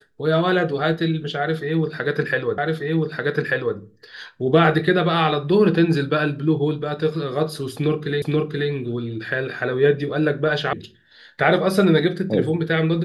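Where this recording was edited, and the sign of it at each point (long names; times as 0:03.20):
0:02.58: the same again, the last 1.19 s
0:08.22: the same again, the last 0.48 s
0:10.73: cut off before it has died away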